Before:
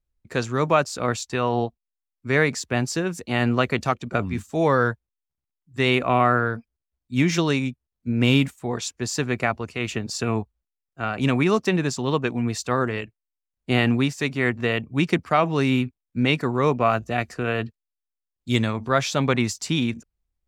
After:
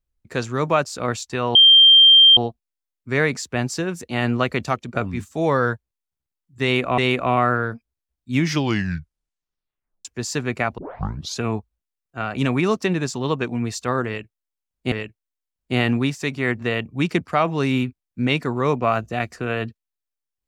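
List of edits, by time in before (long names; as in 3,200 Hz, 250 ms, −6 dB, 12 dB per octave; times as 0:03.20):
0:01.55: insert tone 3,170 Hz −7 dBFS 0.82 s
0:05.81–0:06.16: repeat, 2 plays
0:07.20: tape stop 1.68 s
0:09.61: tape start 0.61 s
0:12.90–0:13.75: repeat, 2 plays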